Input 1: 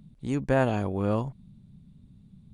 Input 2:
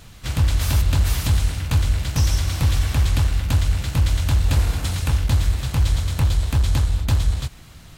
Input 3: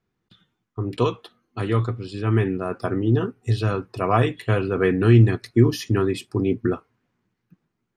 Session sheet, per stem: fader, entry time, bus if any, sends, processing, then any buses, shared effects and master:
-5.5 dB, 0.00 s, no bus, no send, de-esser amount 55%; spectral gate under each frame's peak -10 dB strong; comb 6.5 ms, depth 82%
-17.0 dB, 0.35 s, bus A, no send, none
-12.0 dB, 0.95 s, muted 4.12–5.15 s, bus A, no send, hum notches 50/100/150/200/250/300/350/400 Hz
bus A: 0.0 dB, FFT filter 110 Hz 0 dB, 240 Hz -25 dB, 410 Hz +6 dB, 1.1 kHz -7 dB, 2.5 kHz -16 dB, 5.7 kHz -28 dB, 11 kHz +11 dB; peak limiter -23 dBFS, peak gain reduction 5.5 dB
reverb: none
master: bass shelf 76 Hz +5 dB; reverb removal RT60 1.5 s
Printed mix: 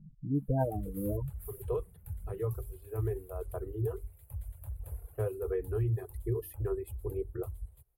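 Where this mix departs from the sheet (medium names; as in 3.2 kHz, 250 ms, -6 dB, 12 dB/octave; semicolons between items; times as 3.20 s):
stem 2 -17.0 dB -> -23.5 dB; stem 3: entry 0.95 s -> 0.70 s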